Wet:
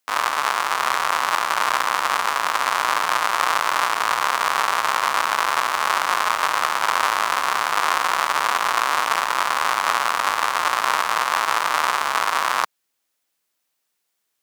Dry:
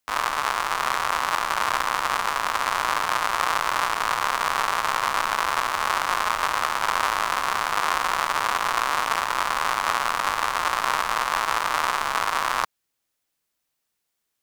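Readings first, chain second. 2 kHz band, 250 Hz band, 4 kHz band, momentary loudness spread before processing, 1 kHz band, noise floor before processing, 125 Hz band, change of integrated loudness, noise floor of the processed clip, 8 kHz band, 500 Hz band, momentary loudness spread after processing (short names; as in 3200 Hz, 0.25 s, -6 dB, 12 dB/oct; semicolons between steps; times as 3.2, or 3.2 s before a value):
+3.5 dB, +0.5 dB, +3.5 dB, 1 LU, +3.0 dB, -79 dBFS, n/a, +3.5 dB, -75 dBFS, +3.5 dB, +2.5 dB, 1 LU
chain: HPF 280 Hz 6 dB/oct; gain +3.5 dB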